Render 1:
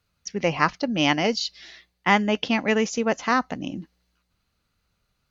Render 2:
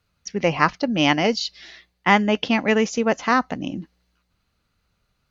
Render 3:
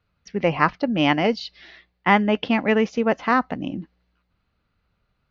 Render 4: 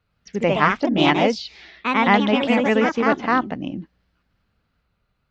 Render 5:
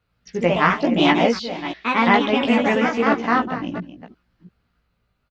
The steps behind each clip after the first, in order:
high-shelf EQ 5,100 Hz −4.5 dB; level +3 dB
Gaussian smoothing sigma 2.1 samples
delay with pitch and tempo change per echo 105 ms, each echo +2 semitones, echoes 2
delay that plays each chunk backwards 344 ms, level −12 dB; double-tracking delay 17 ms −4 dB; level −1 dB

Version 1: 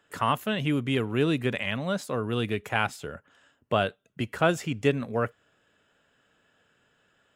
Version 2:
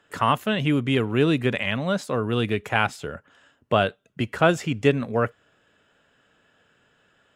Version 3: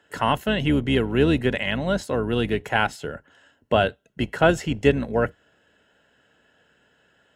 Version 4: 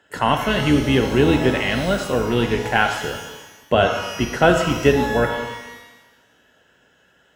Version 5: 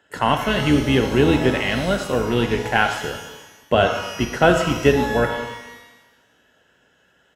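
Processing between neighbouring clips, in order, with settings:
high-shelf EQ 11,000 Hz −10 dB; level +4.5 dB
sub-octave generator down 2 octaves, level −3 dB; notch comb filter 1,200 Hz; level +1.5 dB
reverb with rising layers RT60 1.1 s, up +12 semitones, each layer −8 dB, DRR 4.5 dB; level +2.5 dB
downsampling to 32,000 Hz; in parallel at −11.5 dB: dead-zone distortion −27.5 dBFS; on the sum: level −2 dB

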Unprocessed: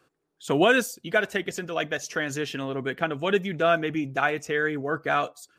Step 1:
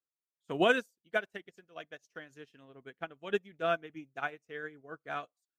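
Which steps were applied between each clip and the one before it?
expander for the loud parts 2.5 to 1, over −39 dBFS
level −4.5 dB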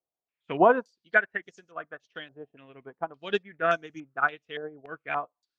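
low-pass on a step sequencer 3.5 Hz 700–6,200 Hz
level +3.5 dB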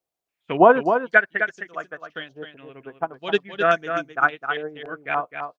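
single-tap delay 259 ms −7.5 dB
level +6 dB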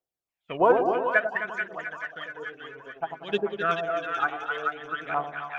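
echo with a time of its own for lows and highs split 1,000 Hz, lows 95 ms, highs 434 ms, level −4 dB
phase shifter 0.58 Hz, delay 2.7 ms, feedback 47%
level −8 dB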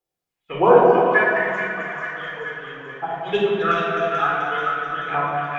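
rectangular room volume 1,500 cubic metres, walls mixed, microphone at 4 metres

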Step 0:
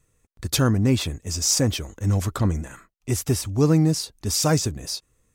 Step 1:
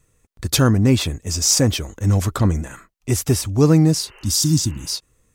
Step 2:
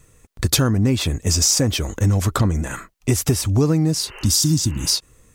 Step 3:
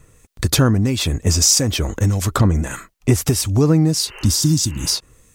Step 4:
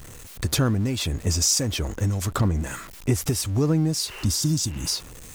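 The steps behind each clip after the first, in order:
healed spectral selection 0:04.07–0:04.95, 350–3,100 Hz before; level +4.5 dB
downward compressor 6 to 1, threshold −24 dBFS, peak gain reduction 14 dB; level +9 dB
two-band tremolo in antiphase 1.6 Hz, depth 50%, crossover 2,300 Hz; level +4 dB
converter with a step at zero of −29.5 dBFS; level −7.5 dB

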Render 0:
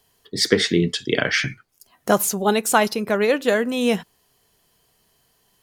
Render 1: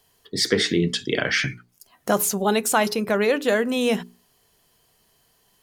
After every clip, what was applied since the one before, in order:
mains-hum notches 60/120/180/240/300/360/420 Hz
in parallel at +2 dB: brickwall limiter −14 dBFS, peak gain reduction 11.5 dB
on the sum: level −6.5 dB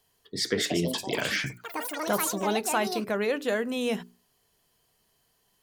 delay with pitch and tempo change per echo 357 ms, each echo +7 semitones, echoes 3, each echo −6 dB
level −7 dB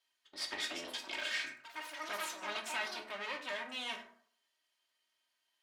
lower of the sound and its delayed copy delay 3.2 ms
resonant band-pass 2,600 Hz, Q 0.79
dense smooth reverb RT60 0.58 s, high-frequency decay 0.5×, DRR 4 dB
level −5.5 dB

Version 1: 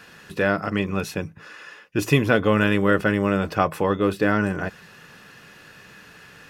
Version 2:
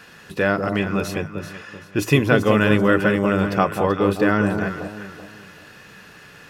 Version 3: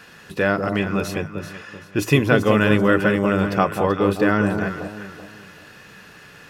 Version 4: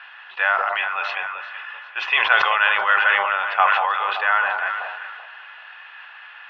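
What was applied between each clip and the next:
delay that swaps between a low-pass and a high-pass 192 ms, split 1,000 Hz, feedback 56%, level −5.5 dB; level +1.5 dB
no processing that can be heard
elliptic band-pass filter 800–3,200 Hz, stop band 50 dB; level that may fall only so fast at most 35 dB per second; level +5 dB

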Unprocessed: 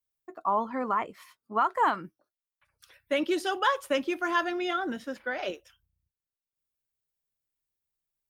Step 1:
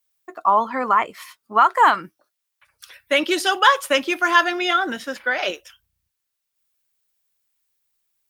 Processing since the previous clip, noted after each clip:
tilt shelving filter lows −6 dB, about 650 Hz
level +8 dB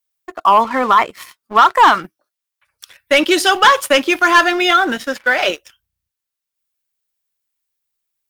leveller curve on the samples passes 2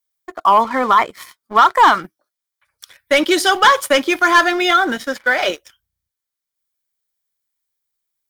notch filter 2,700 Hz, Q 7.7
level −1 dB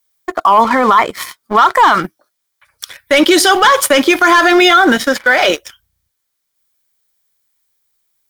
boost into a limiter +13 dB
level −1 dB

